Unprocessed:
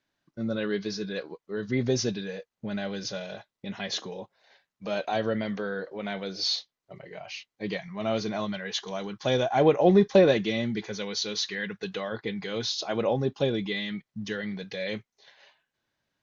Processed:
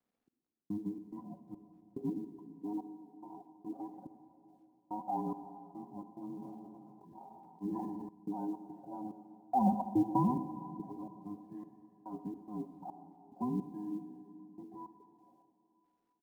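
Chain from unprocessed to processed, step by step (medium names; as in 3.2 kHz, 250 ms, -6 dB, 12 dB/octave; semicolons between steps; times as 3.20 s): every band turned upside down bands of 500 Hz; Chebyshev band-pass 120–800 Hz, order 4; comb 4.1 ms, depth 90%; trance gate "xx...xx.x" 107 bpm -60 dB; companded quantiser 8-bit; reverberation RT60 2.9 s, pre-delay 38 ms, DRR 9 dB; 6.24–8.09 s: decay stretcher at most 22 dB/s; trim -6 dB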